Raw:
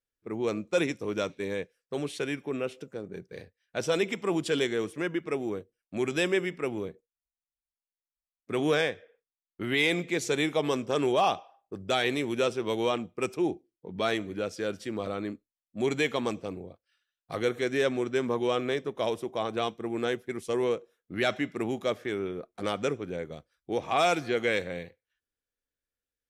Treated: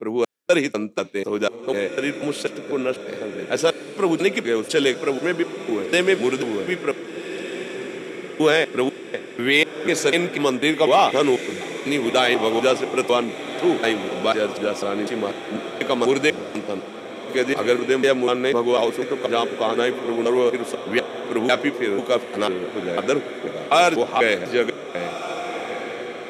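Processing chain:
slices reordered back to front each 247 ms, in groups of 2
high-pass filter 200 Hz 12 dB per octave
on a send: feedback delay with all-pass diffusion 1,538 ms, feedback 53%, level −10.5 dB
on the sum: level +9 dB

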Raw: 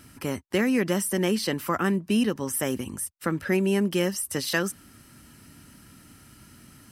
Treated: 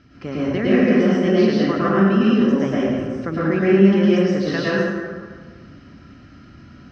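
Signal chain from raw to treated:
Butterworth low-pass 5,800 Hz 48 dB per octave
high-shelf EQ 2,800 Hz −9 dB
notch filter 910 Hz, Q 5
convolution reverb RT60 1.7 s, pre-delay 97 ms, DRR −8 dB

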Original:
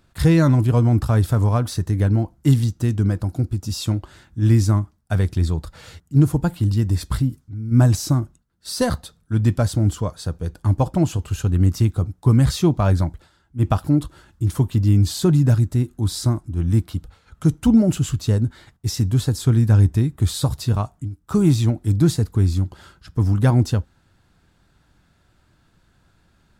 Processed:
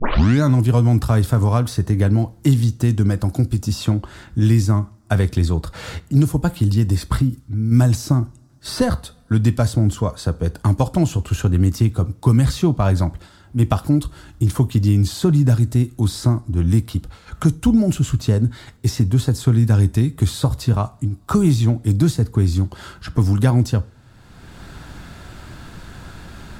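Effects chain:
turntable start at the beginning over 0.43 s
coupled-rooms reverb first 0.36 s, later 1.8 s, from −26 dB, DRR 16 dB
multiband upward and downward compressor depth 70%
level +1.5 dB

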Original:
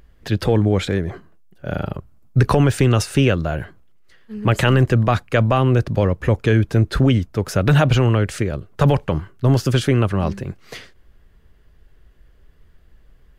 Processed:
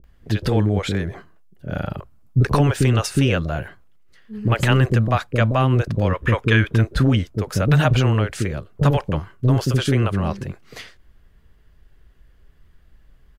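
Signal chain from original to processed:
gain on a spectral selection 0:06.07–0:06.76, 910–3,800 Hz +8 dB
multiband delay without the direct sound lows, highs 40 ms, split 450 Hz
level −1 dB

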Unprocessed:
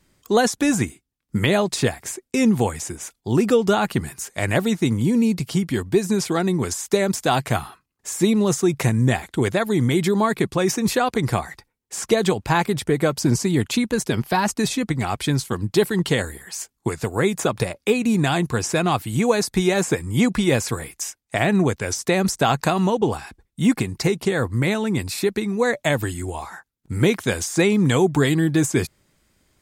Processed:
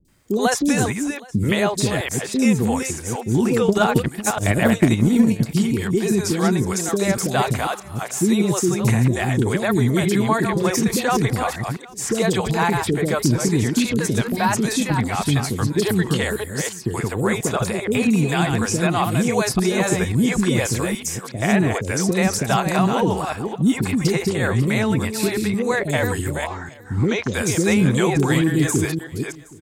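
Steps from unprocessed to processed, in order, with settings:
delay that plays each chunk backwards 287 ms, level −7 dB
0:26.42–0:27.29: Chebyshev low-pass filter 6,400 Hz, order 4
in parallel at +2 dB: brickwall limiter −13.5 dBFS, peak gain reduction 9 dB
on the sum: bit-depth reduction 12 bits, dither triangular
three-band delay without the direct sound lows, highs, mids 50/80 ms, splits 450/4,200 Hz
0:03.64–0:05.51: transient designer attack +11 dB, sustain −8 dB
on a send: single-tap delay 769 ms −23.5 dB
on the sum: level −4 dB

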